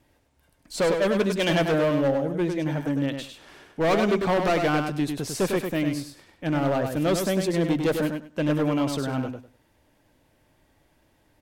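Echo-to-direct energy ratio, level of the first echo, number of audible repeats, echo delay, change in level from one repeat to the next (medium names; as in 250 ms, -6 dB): -5.5 dB, -5.5 dB, 3, 100 ms, -14.5 dB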